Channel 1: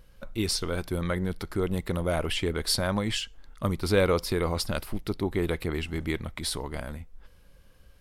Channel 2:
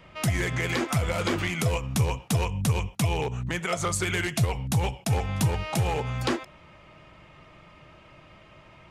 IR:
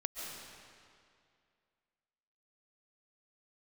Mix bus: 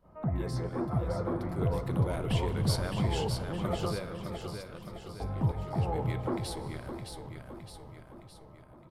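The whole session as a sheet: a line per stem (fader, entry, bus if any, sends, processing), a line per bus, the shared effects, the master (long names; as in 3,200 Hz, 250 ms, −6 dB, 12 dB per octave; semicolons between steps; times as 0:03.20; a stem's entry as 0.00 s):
0:01.18 −17.5 dB → 0:01.63 −6.5 dB → 0:03.82 −6.5 dB → 0:04.10 −19 dB → 0:05.61 −19 dB → 0:06.01 −7.5 dB, 0.00 s, send −12 dB, echo send −4 dB, no processing
+2.0 dB, 0.00 s, muted 0:03.93–0:05.20, send −8.5 dB, echo send −7 dB, low-pass filter 1,100 Hz 24 dB per octave; flanger 0.28 Hz, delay 4 ms, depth 3.6 ms, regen −74%; fake sidechain pumping 87 BPM, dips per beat 1, −19 dB, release 98 ms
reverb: on, RT60 2.3 s, pre-delay 100 ms
echo: repeating echo 614 ms, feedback 53%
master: flanger 0.32 Hz, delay 10 ms, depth 9.7 ms, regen −83%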